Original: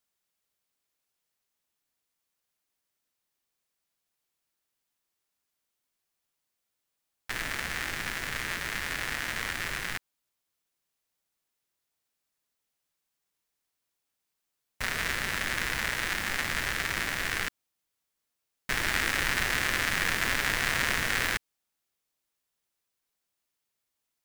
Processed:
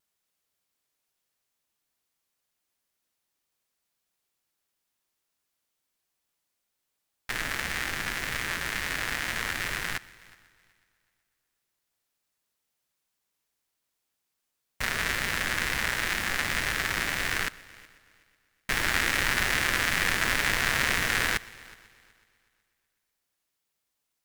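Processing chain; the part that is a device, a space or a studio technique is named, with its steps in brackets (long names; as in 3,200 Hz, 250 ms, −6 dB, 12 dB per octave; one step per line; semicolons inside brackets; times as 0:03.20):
multi-head tape echo (echo machine with several playback heads 124 ms, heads first and third, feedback 43%, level −23 dB; tape wow and flutter)
level +2 dB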